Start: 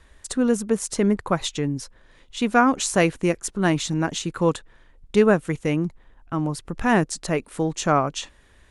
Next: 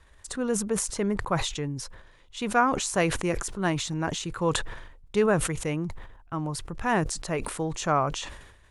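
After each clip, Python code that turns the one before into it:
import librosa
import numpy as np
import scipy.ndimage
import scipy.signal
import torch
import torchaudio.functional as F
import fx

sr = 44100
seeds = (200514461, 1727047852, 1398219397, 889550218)

y = fx.graphic_eq_15(x, sr, hz=(100, 250, 1000), db=(4, -5, 3))
y = fx.sustainer(y, sr, db_per_s=59.0)
y = y * librosa.db_to_amplitude(-5.5)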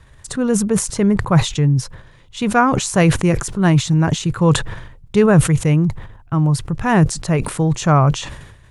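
y = fx.peak_eq(x, sr, hz=130.0, db=13.5, octaves=1.2)
y = y * librosa.db_to_amplitude(7.0)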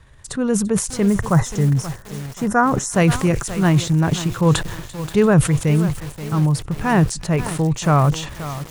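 y = fx.echo_wet_highpass(x, sr, ms=341, feedback_pct=57, hz=3600.0, wet_db=-15.5)
y = fx.spec_box(y, sr, start_s=1.14, length_s=1.78, low_hz=2100.0, high_hz=5100.0, gain_db=-15)
y = fx.echo_crushed(y, sr, ms=530, feedback_pct=55, bits=4, wet_db=-12.0)
y = y * librosa.db_to_amplitude(-2.0)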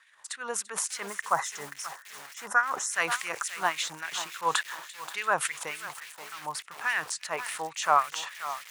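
y = fx.filter_lfo_highpass(x, sr, shape='sine', hz=3.5, low_hz=840.0, high_hz=2200.0, q=2.1)
y = y * librosa.db_to_amplitude(-6.0)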